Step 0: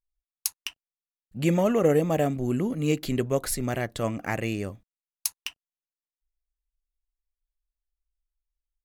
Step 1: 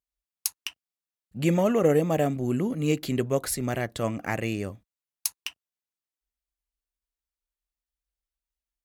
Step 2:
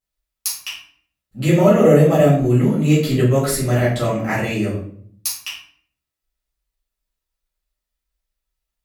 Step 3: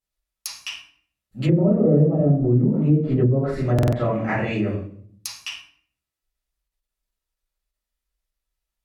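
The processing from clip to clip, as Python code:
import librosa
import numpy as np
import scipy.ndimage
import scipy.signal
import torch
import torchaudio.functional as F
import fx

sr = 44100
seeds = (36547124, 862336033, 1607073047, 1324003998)

y1 = scipy.signal.sosfilt(scipy.signal.butter(2, 53.0, 'highpass', fs=sr, output='sos'), x)
y2 = fx.room_shoebox(y1, sr, seeds[0], volume_m3=73.0, walls='mixed', distance_m=2.2)
y2 = F.gain(torch.from_numpy(y2), -1.0).numpy()
y3 = fx.env_lowpass_down(y2, sr, base_hz=390.0, full_db=-11.0)
y3 = fx.buffer_glitch(y3, sr, at_s=(3.74,), block=2048, repeats=3)
y3 = fx.end_taper(y3, sr, db_per_s=180.0)
y3 = F.gain(torch.from_numpy(y3), -2.0).numpy()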